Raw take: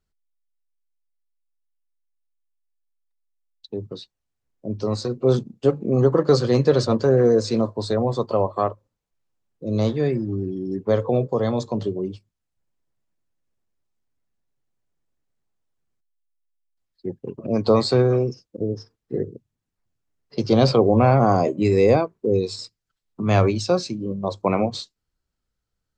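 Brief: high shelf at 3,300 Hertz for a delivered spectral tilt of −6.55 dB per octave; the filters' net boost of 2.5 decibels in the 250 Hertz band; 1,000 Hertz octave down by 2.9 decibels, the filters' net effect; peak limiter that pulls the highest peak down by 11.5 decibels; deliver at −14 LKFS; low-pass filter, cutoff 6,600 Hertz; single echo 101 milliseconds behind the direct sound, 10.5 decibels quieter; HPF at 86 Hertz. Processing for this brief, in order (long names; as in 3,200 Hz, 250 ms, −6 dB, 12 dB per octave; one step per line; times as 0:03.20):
high-pass filter 86 Hz
low-pass filter 6,600 Hz
parametric band 250 Hz +3.5 dB
parametric band 1,000 Hz −5 dB
high-shelf EQ 3,300 Hz +4 dB
brickwall limiter −15 dBFS
single-tap delay 101 ms −10.5 dB
level +11.5 dB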